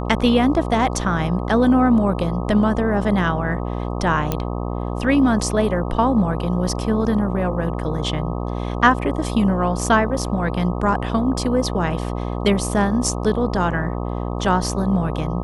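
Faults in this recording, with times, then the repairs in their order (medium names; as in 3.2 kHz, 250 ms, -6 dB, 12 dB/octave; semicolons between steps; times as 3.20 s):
buzz 60 Hz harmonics 21 -25 dBFS
4.32 s: pop -7 dBFS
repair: de-click; de-hum 60 Hz, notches 21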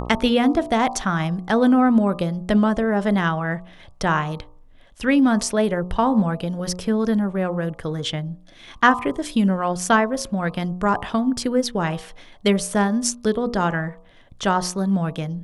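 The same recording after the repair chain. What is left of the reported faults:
nothing left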